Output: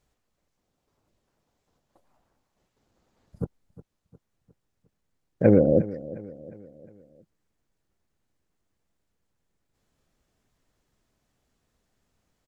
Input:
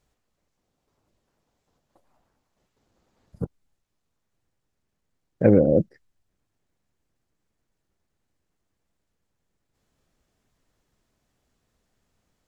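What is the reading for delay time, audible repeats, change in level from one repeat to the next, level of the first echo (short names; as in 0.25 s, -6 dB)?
0.357 s, 3, -6.5 dB, -17.5 dB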